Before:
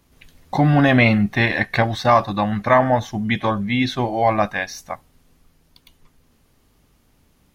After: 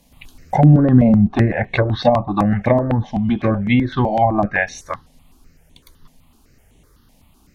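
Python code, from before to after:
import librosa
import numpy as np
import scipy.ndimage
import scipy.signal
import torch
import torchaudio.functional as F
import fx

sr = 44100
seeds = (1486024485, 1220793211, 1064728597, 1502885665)

y = fx.env_lowpass_down(x, sr, base_hz=480.0, full_db=-12.5)
y = fx.peak_eq(y, sr, hz=1800.0, db=-9.0, octaves=0.24, at=(1.52, 1.95))
y = fx.phaser_held(y, sr, hz=7.9, low_hz=360.0, high_hz=4900.0)
y = F.gain(torch.from_numpy(y), 7.5).numpy()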